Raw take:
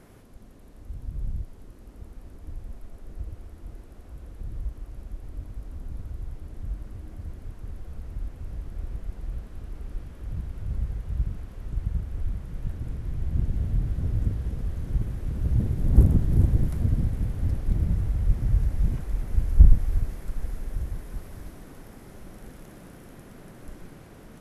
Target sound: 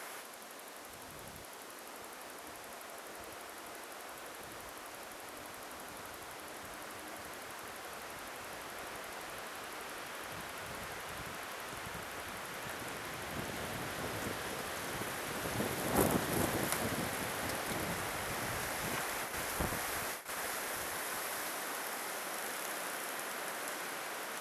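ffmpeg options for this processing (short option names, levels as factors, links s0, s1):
-filter_complex "[0:a]asplit=3[s0][s1][s2];[s0]afade=t=out:st=19.22:d=0.02[s3];[s1]agate=range=0.0224:threshold=0.0501:ratio=3:detection=peak,afade=t=in:st=19.22:d=0.02,afade=t=out:st=20.46:d=0.02[s4];[s2]afade=t=in:st=20.46:d=0.02[s5];[s3][s4][s5]amix=inputs=3:normalize=0,highpass=860,volume=5.96"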